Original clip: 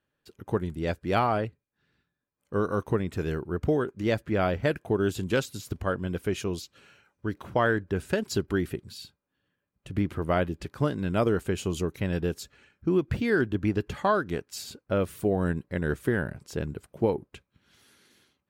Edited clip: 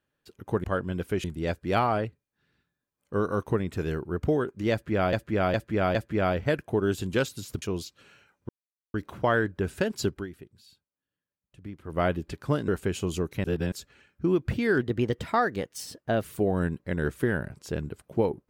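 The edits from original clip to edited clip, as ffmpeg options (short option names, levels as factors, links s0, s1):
-filter_complex "[0:a]asplit=15[s0][s1][s2][s3][s4][s5][s6][s7][s8][s9][s10][s11][s12][s13][s14];[s0]atrim=end=0.642[s15];[s1]atrim=start=5.788:end=6.392[s16];[s2]atrim=start=0.638:end=4.532[s17];[s3]atrim=start=4.118:end=4.532[s18];[s4]atrim=start=4.118:end=4.532[s19];[s5]atrim=start=4.118:end=5.792[s20];[s6]atrim=start=6.388:end=7.26,asetpts=PTS-STARTPTS,afade=t=out:st=0.868:d=0.004:c=hsin,apad=pad_dur=0.45[s21];[s7]atrim=start=7.26:end=8.59,asetpts=PTS-STARTPTS,afade=t=in:d=0.004:c=hsin,afade=t=out:st=1.15:d=0.18:silence=0.211349[s22];[s8]atrim=start=8.59:end=10.16,asetpts=PTS-STARTPTS,volume=0.211[s23];[s9]atrim=start=10.16:end=11.002,asetpts=PTS-STARTPTS,afade=t=in:d=0.18:silence=0.211349[s24];[s10]atrim=start=11.308:end=12.072[s25];[s11]atrim=start=12.068:end=12.352,asetpts=PTS-STARTPTS,areverse[s26];[s12]atrim=start=12.348:end=13.444[s27];[s13]atrim=start=13.44:end=15.09,asetpts=PTS-STARTPTS,asetrate=50715,aresample=44100[s28];[s14]atrim=start=15.086[s29];[s15][s16]acrossfade=d=0.004:c1=hsin:c2=hsin[s30];[s30][s17]acrossfade=d=0.004:c1=hsin:c2=hsin[s31];[s31][s18]acrossfade=d=0.004:c1=hsin:c2=hsin[s32];[s32][s19]acrossfade=d=0.004:c1=hsin:c2=hsin[s33];[s33][s20]acrossfade=d=0.004:c1=hsin:c2=hsin[s34];[s21][s22][s23][s24]concat=n=4:v=0:a=1[s35];[s34][s35]acrossfade=d=0.004:c1=hsin:c2=hsin[s36];[s36][s25]acrossfade=d=0.004:c1=hsin:c2=hsin[s37];[s37][s26]acrossfade=d=0.004:c1=hsin:c2=hsin[s38];[s38][s27]acrossfade=d=0.004:c1=hsin:c2=hsin[s39];[s39][s28]acrossfade=d=0.004:c1=hsin:c2=hsin[s40];[s40][s29]acrossfade=d=0.004:c1=hsin:c2=hsin"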